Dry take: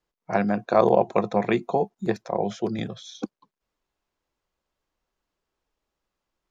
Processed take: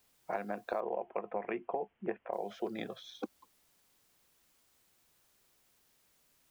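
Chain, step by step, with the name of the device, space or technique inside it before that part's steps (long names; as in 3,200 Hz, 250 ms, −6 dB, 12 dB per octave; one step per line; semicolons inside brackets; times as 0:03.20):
baby monitor (band-pass filter 440–3,300 Hz; downward compressor, threshold −31 dBFS, peak gain reduction 16.5 dB; white noise bed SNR 27 dB)
0:00.80–0:02.33: Butterworth low-pass 3,100 Hz 96 dB per octave
low-shelf EQ 430 Hz +6 dB
level −4 dB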